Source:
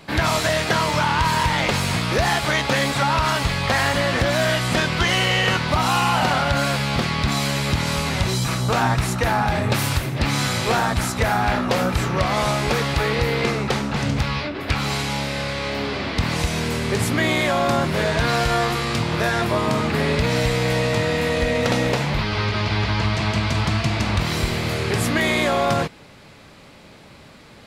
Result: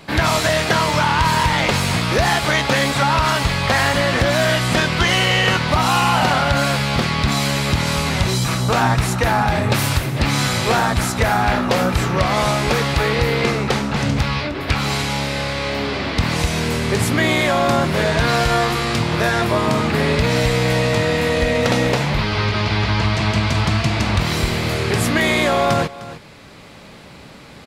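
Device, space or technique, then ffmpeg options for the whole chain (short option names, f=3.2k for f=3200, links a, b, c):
ducked delay: -filter_complex "[0:a]asplit=3[a][b][c];[b]adelay=305,volume=-2.5dB[d];[c]apad=whole_len=1233395[e];[d][e]sidechaincompress=threshold=-34dB:ratio=10:attack=5.9:release=668[f];[a][f]amix=inputs=2:normalize=0,volume=3dB"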